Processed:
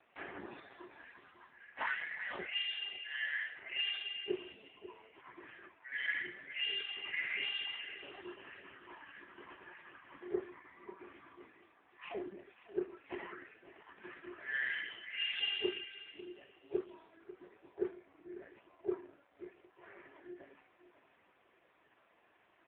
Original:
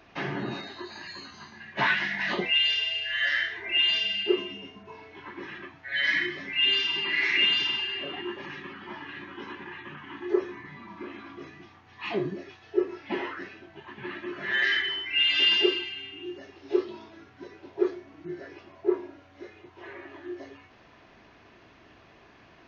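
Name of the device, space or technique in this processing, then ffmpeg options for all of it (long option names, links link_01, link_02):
satellite phone: -af "highpass=370,lowpass=3300,aecho=1:1:544:0.178,volume=-8dB" -ar 8000 -c:a libopencore_amrnb -b:a 5150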